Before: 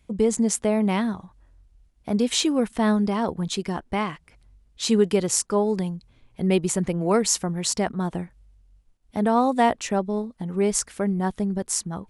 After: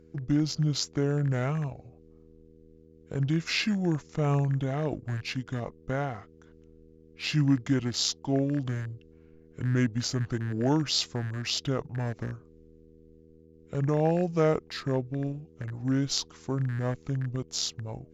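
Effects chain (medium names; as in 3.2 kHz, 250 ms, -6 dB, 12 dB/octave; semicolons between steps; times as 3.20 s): rattle on loud lows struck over -28 dBFS, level -28 dBFS; in parallel at -10 dB: crossover distortion -36.5 dBFS; on the sum: mains buzz 120 Hz, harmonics 6, -48 dBFS 0 dB/octave; wide varispeed 0.667×; trim -7.5 dB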